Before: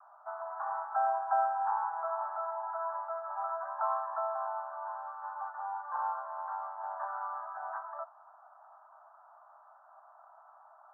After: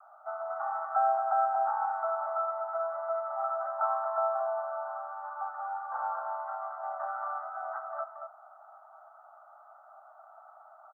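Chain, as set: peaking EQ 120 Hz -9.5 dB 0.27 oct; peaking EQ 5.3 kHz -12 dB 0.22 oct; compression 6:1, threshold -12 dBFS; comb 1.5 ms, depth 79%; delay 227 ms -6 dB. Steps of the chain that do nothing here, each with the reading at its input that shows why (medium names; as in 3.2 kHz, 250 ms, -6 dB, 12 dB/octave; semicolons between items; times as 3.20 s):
peaking EQ 120 Hz: input has nothing below 570 Hz; peaking EQ 5.3 kHz: input has nothing above 1.7 kHz; compression, threshold -12 dBFS: peak at its input -18.5 dBFS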